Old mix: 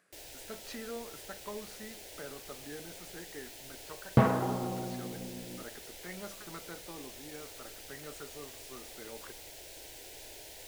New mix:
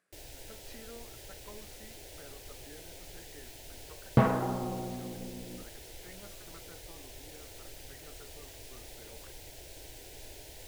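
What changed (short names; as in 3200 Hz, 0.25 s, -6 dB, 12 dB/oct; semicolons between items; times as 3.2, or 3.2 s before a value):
speech -7.0 dB; first sound: add low shelf 230 Hz +11.5 dB; reverb: off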